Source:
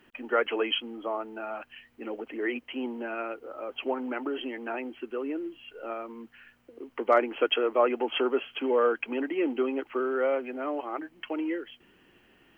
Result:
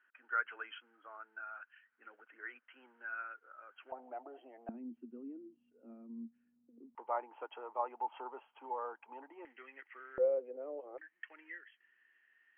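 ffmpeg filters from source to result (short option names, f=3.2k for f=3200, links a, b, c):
-af "asetnsamples=n=441:p=0,asendcmd='3.92 bandpass f 700;4.69 bandpass f 230;6.95 bandpass f 890;9.45 bandpass f 1900;10.18 bandpass f 500;10.98 bandpass f 1800',bandpass=f=1.5k:t=q:w=9.2:csg=0"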